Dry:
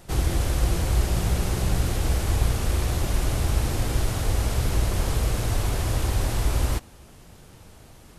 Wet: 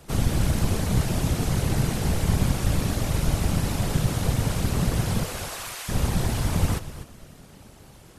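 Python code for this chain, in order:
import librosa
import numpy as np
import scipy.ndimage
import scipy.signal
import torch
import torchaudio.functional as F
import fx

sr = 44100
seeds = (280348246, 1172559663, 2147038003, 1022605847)

y = fx.highpass(x, sr, hz=fx.line((5.23, 410.0), (5.88, 1400.0)), slope=12, at=(5.23, 5.88), fade=0.02)
y = fx.echo_feedback(y, sr, ms=249, feedback_pct=26, wet_db=-13.5)
y = fx.whisperise(y, sr, seeds[0])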